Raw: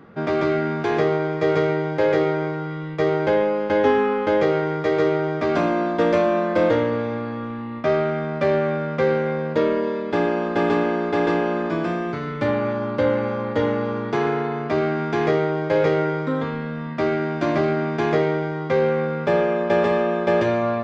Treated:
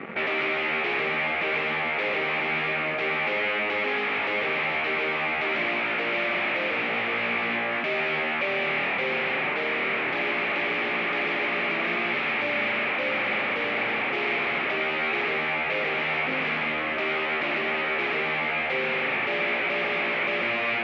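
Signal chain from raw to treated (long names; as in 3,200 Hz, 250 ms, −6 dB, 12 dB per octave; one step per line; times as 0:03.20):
speech leveller 0.5 s
leveller curve on the samples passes 3
brickwall limiter −14 dBFS, peak gain reduction 7 dB
wave folding −24.5 dBFS
loudspeaker in its box 300–2,600 Hz, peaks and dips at 310 Hz −6 dB, 480 Hz −5 dB, 680 Hz −4 dB, 990 Hz −8 dB, 1,500 Hz −6 dB, 2,300 Hz +8 dB
level +5.5 dB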